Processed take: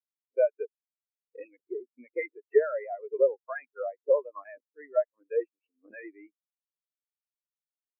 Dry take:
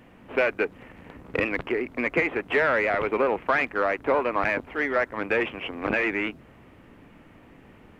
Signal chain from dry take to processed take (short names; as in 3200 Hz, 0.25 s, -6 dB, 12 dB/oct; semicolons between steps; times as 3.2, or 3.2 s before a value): low shelf 120 Hz -11.5 dB; spectral expander 4:1